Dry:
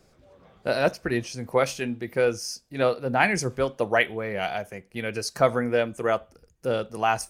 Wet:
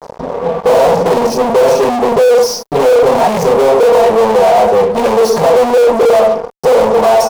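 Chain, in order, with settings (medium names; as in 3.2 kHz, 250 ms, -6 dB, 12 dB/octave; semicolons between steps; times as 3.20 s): peak limiter -16.5 dBFS, peak gain reduction 10.5 dB; transient shaper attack +8 dB, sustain -6 dB; comb 4.3 ms, depth 79%; reverberation RT60 0.35 s, pre-delay 3 ms, DRR -10 dB; fuzz box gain 30 dB, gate -37 dBFS; waveshaping leveller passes 1; high-order bell 650 Hz +12.5 dB; trim -5.5 dB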